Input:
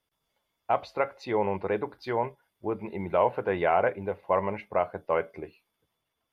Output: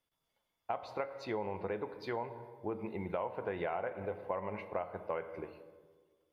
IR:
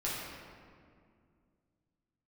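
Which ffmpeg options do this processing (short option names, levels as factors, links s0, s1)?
-filter_complex "[0:a]asplit=2[s0][s1];[1:a]atrim=start_sample=2205,asetrate=74970,aresample=44100[s2];[s1][s2]afir=irnorm=-1:irlink=0,volume=0.282[s3];[s0][s3]amix=inputs=2:normalize=0,acompressor=threshold=0.0447:ratio=6,volume=0.501"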